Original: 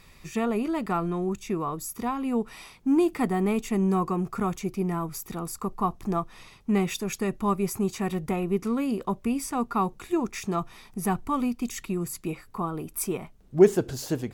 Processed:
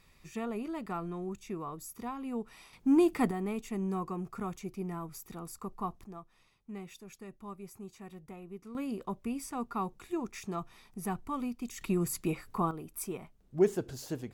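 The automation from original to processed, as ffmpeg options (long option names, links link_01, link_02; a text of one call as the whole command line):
ffmpeg -i in.wav -af "asetnsamples=nb_out_samples=441:pad=0,asendcmd='2.73 volume volume -2.5dB;3.31 volume volume -10dB;6.04 volume volume -19.5dB;8.75 volume volume -9dB;11.81 volume volume -0.5dB;12.71 volume volume -9dB',volume=-10dB" out.wav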